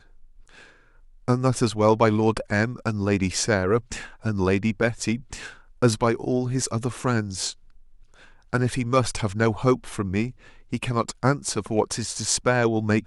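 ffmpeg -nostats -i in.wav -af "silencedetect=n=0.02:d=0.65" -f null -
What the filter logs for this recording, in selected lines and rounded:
silence_start: 0.00
silence_end: 1.28 | silence_duration: 1.28
silence_start: 7.52
silence_end: 8.53 | silence_duration: 1.01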